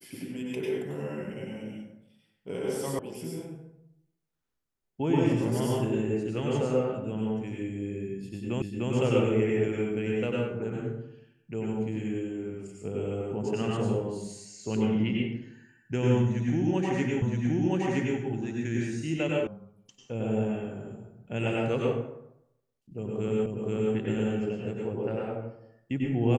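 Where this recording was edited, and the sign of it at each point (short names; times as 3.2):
2.99 sound cut off
8.62 repeat of the last 0.3 s
17.22 repeat of the last 0.97 s
19.47 sound cut off
23.46 repeat of the last 0.48 s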